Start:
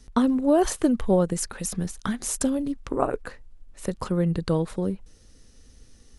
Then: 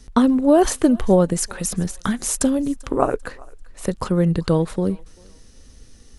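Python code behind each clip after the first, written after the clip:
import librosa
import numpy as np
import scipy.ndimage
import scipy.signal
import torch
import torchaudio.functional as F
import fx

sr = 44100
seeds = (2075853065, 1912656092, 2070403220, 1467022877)

y = fx.echo_thinned(x, sr, ms=392, feedback_pct=34, hz=710.0, wet_db=-22.5)
y = y * 10.0 ** (5.5 / 20.0)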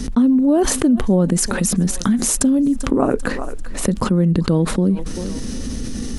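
y = fx.peak_eq(x, sr, hz=230.0, db=13.0, octaves=1.1)
y = fx.env_flatten(y, sr, amount_pct=70)
y = y * 10.0 ** (-11.5 / 20.0)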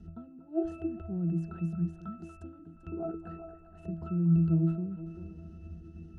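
y = fx.octave_resonator(x, sr, note='E', decay_s=0.42)
y = fx.echo_wet_bandpass(y, sr, ms=237, feedback_pct=57, hz=1200.0, wet_db=-11.0)
y = y * 10.0 ** (-2.5 / 20.0)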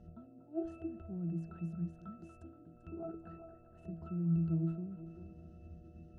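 y = fx.dmg_buzz(x, sr, base_hz=120.0, harmonics=6, level_db=-57.0, tilt_db=-2, odd_only=False)
y = y * 10.0 ** (-7.5 / 20.0)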